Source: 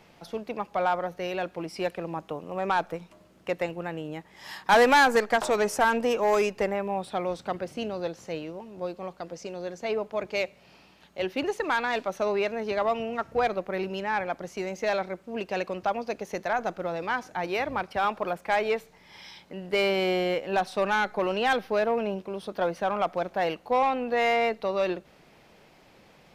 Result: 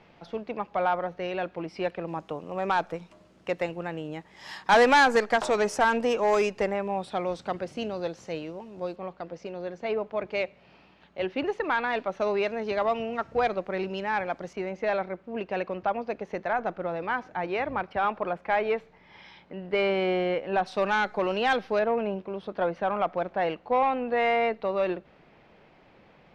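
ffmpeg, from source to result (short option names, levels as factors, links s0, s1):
-af "asetnsamples=n=441:p=0,asendcmd='2.08 lowpass f 7700;8.96 lowpass f 3100;12.2 lowpass f 5500;14.53 lowpass f 2600;20.66 lowpass f 5900;21.79 lowpass f 2800',lowpass=3500"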